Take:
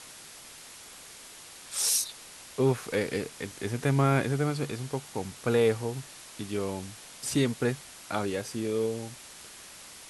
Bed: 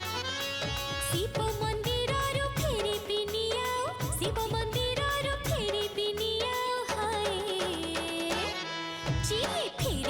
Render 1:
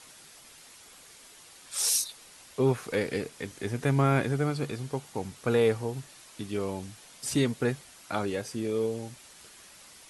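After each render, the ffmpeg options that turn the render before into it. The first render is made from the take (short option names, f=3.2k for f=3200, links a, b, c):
-af "afftdn=nr=6:nf=-48"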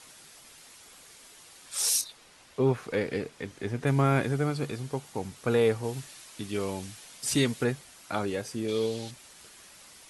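-filter_complex "[0:a]asettb=1/sr,asplit=3[a][b][c];[a]atrim=end=2.014[d];[b]atrim=start=2.01:end=3.87,asetpts=PTS-STARTPTS,afade=t=in:d=0.004:c=qsin,afade=t=out:st=1.856:d=0.004:c=qsin,lowpass=f=3.7k:p=1[e];[c]atrim=start=3.866[f];[d][e]acrossfade=d=0.004:c1=hsin:c2=qsin[g];[g][f]acrossfade=d=0.004:c1=qsin:c2=hsin,asplit=3[h][i][j];[h]afade=t=out:st=5.83:d=0.02[k];[i]adynamicequalizer=threshold=0.00447:dfrequency=1500:dqfactor=0.7:tfrequency=1500:tqfactor=0.7:attack=5:release=100:ratio=0.375:range=2.5:mode=boostabove:tftype=highshelf,afade=t=in:st=5.83:d=0.02,afade=t=out:st=7.63:d=0.02[l];[j]afade=t=in:st=7.63:d=0.02[m];[k][l][m]amix=inputs=3:normalize=0,asettb=1/sr,asplit=3[n][o][p];[n]atrim=end=8.684[q];[o]atrim=start=8.68:end=9.11,asetpts=PTS-STARTPTS,afade=t=in:d=0.004:c=qsin,afade=t=out:st=0.426:d=0.004:c=qsin,equalizer=f=3.9k:t=o:w=1.1:g=13.5[r];[p]atrim=start=9.106[s];[q][r]acrossfade=d=0.004:c1=hsin:c2=qsin[t];[t][s]acrossfade=d=0.004:c1=qsin:c2=hsin"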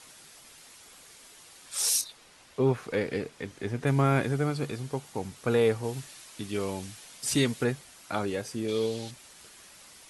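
-af anull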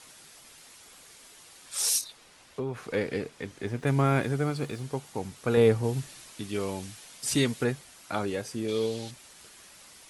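-filter_complex "[0:a]asettb=1/sr,asplit=3[a][b][c];[a]atrim=end=1.984[d];[b]atrim=start=1.98:end=2.94,asetpts=PTS-STARTPTS,afade=t=in:d=0.004:c=qsin,afade=t=out:st=0.956:d=0.004:c=qsin,acompressor=threshold=-28dB:ratio=6:attack=3.2:release=140:knee=1:detection=peak[e];[c]atrim=start=2.936[f];[d][e]acrossfade=d=0.004:c1=hsin:c2=qsin[g];[g][f]acrossfade=d=0.004:c1=qsin:c2=hsin,asettb=1/sr,asplit=3[h][i][j];[h]atrim=end=3.664[k];[i]atrim=start=3.66:end=4.82,asetpts=PTS-STARTPTS,afade=t=in:d=0.004:c=qsin,afade=t=out:st=1.156:d=0.004:c=qsin,aeval=exprs='sgn(val(0))*max(abs(val(0))-0.00168,0)':c=same[l];[j]atrim=start=4.816[m];[k][l]acrossfade=d=0.004:c1=hsin:c2=qsin[n];[n][m]acrossfade=d=0.004:c1=qsin:c2=hsin,asettb=1/sr,asplit=3[o][p][q];[o]atrim=end=5.574[r];[p]atrim=start=5.57:end=6.33,asetpts=PTS-STARTPTS,afade=t=in:d=0.004:c=qsin,afade=t=out:st=0.756:d=0.004:c=qsin,lowshelf=f=360:g=7.5[s];[q]atrim=start=6.326[t];[r][s]acrossfade=d=0.004:c1=hsin:c2=qsin[u];[u][t]acrossfade=d=0.004:c1=qsin:c2=hsin"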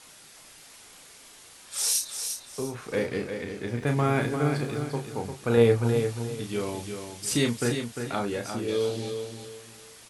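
-filter_complex "[0:a]asplit=2[a][b];[b]adelay=34,volume=-6dB[c];[a][c]amix=inputs=2:normalize=0,asplit=2[d][e];[e]aecho=0:1:350|700|1050|1400:0.447|0.13|0.0376|0.0109[f];[d][f]amix=inputs=2:normalize=0"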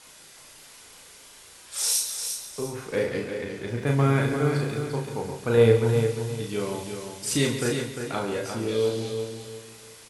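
-filter_complex "[0:a]asplit=2[a][b];[b]adelay=36,volume=-6dB[c];[a][c]amix=inputs=2:normalize=0,aecho=1:1:138:0.316"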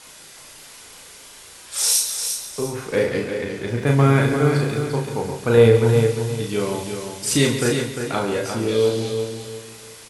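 -af "volume=6dB,alimiter=limit=-3dB:level=0:latency=1"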